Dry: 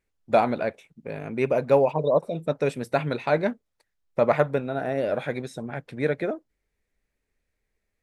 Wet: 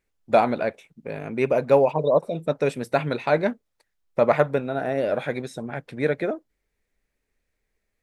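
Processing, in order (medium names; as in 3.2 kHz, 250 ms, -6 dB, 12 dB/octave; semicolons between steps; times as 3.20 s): peaking EQ 85 Hz -2.5 dB 2 oct; trim +2 dB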